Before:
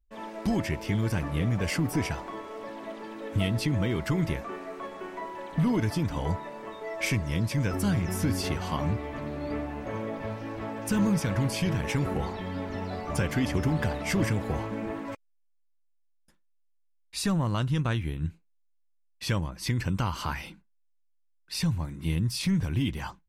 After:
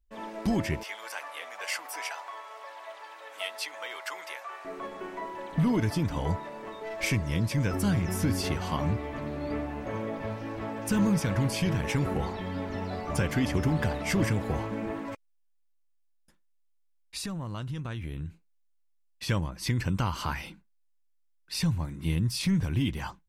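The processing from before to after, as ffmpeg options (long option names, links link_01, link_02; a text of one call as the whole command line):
ffmpeg -i in.wav -filter_complex "[0:a]asettb=1/sr,asplit=3[link_01][link_02][link_03];[link_01]atrim=end=0.834[link_04];[link_02]atrim=start=0.83:end=4.65,asetpts=PTS-STARTPTS,afade=type=in:duration=0.004:curve=qsin,afade=type=out:start_time=3.816:duration=0.004:curve=qsin,highpass=frequency=690:width=0.5412,highpass=frequency=690:width=1.3066[link_05];[link_03]atrim=start=4.646[link_06];[link_04][link_05]acrossfade=duration=0.004:curve1=hsin:curve2=qsin[link_07];[link_07][link_06]acrossfade=duration=0.004:curve1=qsin:curve2=hsin,asettb=1/sr,asplit=3[link_08][link_09][link_10];[link_08]atrim=end=6.404[link_11];[link_09]atrim=start=6.4:end=7.04,asetpts=PTS-STARTPTS,afade=type=in:duration=0.004:curve=qsin,afade=type=out:start_time=0.636:duration=0.004:curve=qsin,aeval=exprs='clip(val(0),-1,0.0158)':channel_layout=same[link_12];[link_10]atrim=start=7.036[link_13];[link_11][link_12]acrossfade=duration=0.004:curve1=hsin:curve2=qsin[link_14];[link_14][link_13]acrossfade=duration=0.004:curve1=qsin:curve2=hsin,asettb=1/sr,asplit=3[link_15][link_16][link_17];[link_15]atrim=end=15.084[link_18];[link_16]atrim=start=15.08:end=19.29,asetpts=PTS-STARTPTS,afade=type=in:duration=0.004:curve=qsin,afade=type=out:start_time=4.206:duration=0.004:curve=qsin,acompressor=threshold=-32dB:ratio=6:attack=3.2:release=140:knee=1:detection=peak[link_19];[link_17]atrim=start=19.286[link_20];[link_18][link_19]acrossfade=duration=0.004:curve1=hsin:curve2=qsin[link_21];[link_21][link_20]acrossfade=duration=0.004:curve1=qsin:curve2=hsin" out.wav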